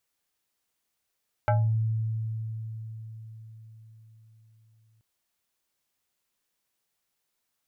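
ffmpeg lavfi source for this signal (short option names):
-f lavfi -i "aevalsrc='0.112*pow(10,-3*t/4.97)*sin(2*PI*111*t+1.8*pow(10,-3*t/0.32)*sin(2*PI*6.52*111*t))':d=3.53:s=44100"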